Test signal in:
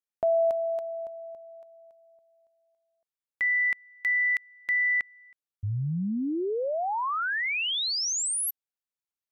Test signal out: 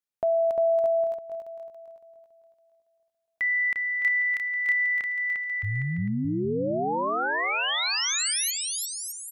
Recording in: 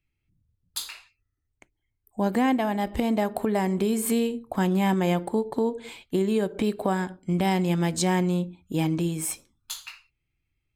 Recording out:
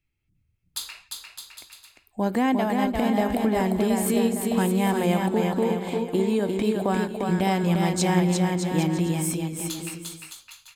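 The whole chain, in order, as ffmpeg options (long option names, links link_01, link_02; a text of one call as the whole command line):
ffmpeg -i in.wav -af "aecho=1:1:350|612.5|809.4|957|1068:0.631|0.398|0.251|0.158|0.1" out.wav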